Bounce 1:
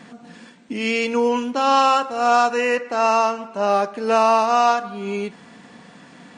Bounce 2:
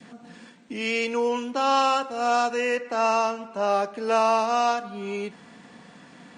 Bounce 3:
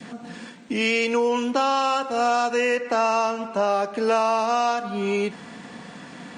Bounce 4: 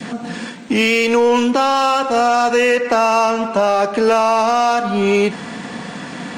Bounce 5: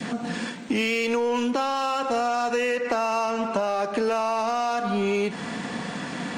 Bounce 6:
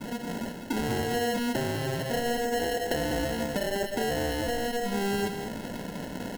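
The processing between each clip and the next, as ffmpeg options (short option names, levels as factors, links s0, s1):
-filter_complex "[0:a]adynamicequalizer=threshold=0.0316:dfrequency=1100:dqfactor=1.2:tfrequency=1100:tqfactor=1.2:attack=5:release=100:ratio=0.375:range=3:mode=cutabove:tftype=bell,acrossover=split=340|4200[s0][s1][s2];[s0]alimiter=level_in=1.68:limit=0.0631:level=0:latency=1,volume=0.596[s3];[s3][s1][s2]amix=inputs=3:normalize=0,volume=0.668"
-af "acompressor=threshold=0.0447:ratio=4,volume=2.51"
-filter_complex "[0:a]asplit=2[s0][s1];[s1]asoftclip=type=hard:threshold=0.0398,volume=0.631[s2];[s0][s2]amix=inputs=2:normalize=0,alimiter=limit=0.2:level=0:latency=1:release=81,volume=2.24"
-af "acompressor=threshold=0.112:ratio=6,volume=0.708"
-af "acrusher=samples=37:mix=1:aa=0.000001,aecho=1:1:199:0.422,volume=0.562"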